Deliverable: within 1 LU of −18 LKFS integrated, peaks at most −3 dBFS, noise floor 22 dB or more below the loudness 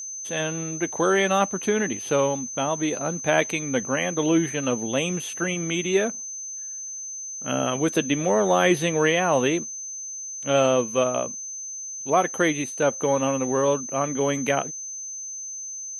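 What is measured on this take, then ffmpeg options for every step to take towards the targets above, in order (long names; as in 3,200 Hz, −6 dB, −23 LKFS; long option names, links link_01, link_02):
interfering tone 6,200 Hz; level of the tone −32 dBFS; integrated loudness −24.0 LKFS; sample peak −5.0 dBFS; target loudness −18.0 LKFS
→ -af "bandreject=frequency=6200:width=30"
-af "volume=6dB,alimiter=limit=-3dB:level=0:latency=1"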